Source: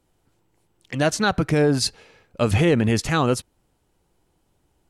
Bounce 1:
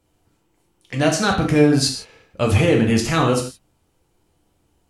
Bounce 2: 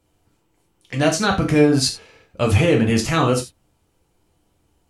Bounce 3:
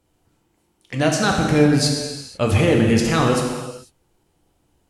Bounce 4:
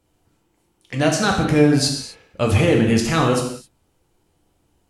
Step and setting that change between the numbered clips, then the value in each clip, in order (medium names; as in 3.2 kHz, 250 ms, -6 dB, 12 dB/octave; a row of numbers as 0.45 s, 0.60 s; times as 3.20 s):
gated-style reverb, gate: 190 ms, 120 ms, 520 ms, 290 ms